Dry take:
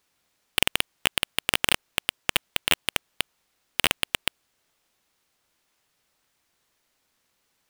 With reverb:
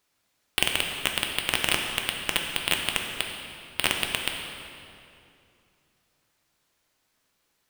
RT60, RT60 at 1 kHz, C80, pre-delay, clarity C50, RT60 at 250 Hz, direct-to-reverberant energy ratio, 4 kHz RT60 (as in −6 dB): 2.6 s, 2.5 s, 4.5 dB, 3 ms, 3.5 dB, 3.0 s, 1.5 dB, 2.0 s